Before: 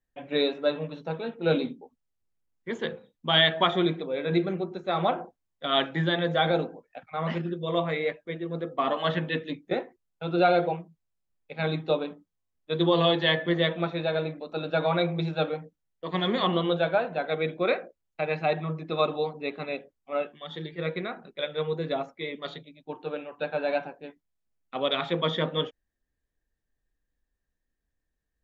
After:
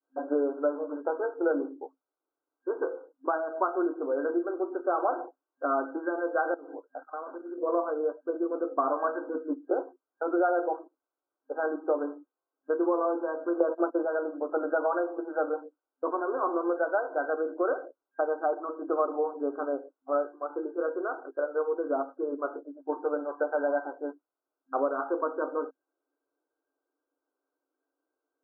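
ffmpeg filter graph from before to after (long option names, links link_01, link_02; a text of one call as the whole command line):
ffmpeg -i in.wav -filter_complex "[0:a]asettb=1/sr,asplit=3[link_01][link_02][link_03];[link_01]atrim=end=6.544[link_04];[link_02]atrim=start=6.54:end=7.58,asetpts=PTS-STARTPTS,afade=type=in:duration=0.004:curve=qsin,afade=type=out:start_time=1.036:duration=0.004:curve=qsin,equalizer=frequency=710:width_type=o:width=2.2:gain=-3,acompressor=threshold=-40dB:ratio=12:attack=3.2:release=140:knee=1:detection=peak[link_05];[link_03]atrim=start=7.576[link_06];[link_04][link_05]acrossfade=duration=0.004:curve1=hsin:curve2=qsin[link_07];[link_07][link_06]acrossfade=duration=0.004:curve1=qsin:curve2=hsin,asettb=1/sr,asplit=3[link_08][link_09][link_10];[link_08]atrim=end=13.604[link_11];[link_09]atrim=start=13.6:end=14.05,asetpts=PTS-STARTPTS,afade=type=in:duration=0.004:curve=qsin,afade=type=out:start_time=0.446:duration=0.004:curve=qsin,agate=range=-23dB:threshold=-34dB:ratio=16:release=100:detection=peak,equalizer=frequency=420:width=0.39:gain=10.5[link_12];[link_10]atrim=start=14.046[link_13];[link_11][link_12]acrossfade=duration=0.004:curve1=hsin:curve2=qsin[link_14];[link_14][link_13]acrossfade=duration=0.004:curve1=qsin:curve2=hsin,adynamicequalizer=threshold=0.0158:dfrequency=530:dqfactor=0.78:tfrequency=530:tqfactor=0.78:attack=5:release=100:ratio=0.375:range=2:mode=cutabove:tftype=bell,acompressor=threshold=-34dB:ratio=3,afftfilt=real='re*between(b*sr/4096,260,1600)':imag='im*between(b*sr/4096,260,1600)':win_size=4096:overlap=0.75,volume=8.5dB" out.wav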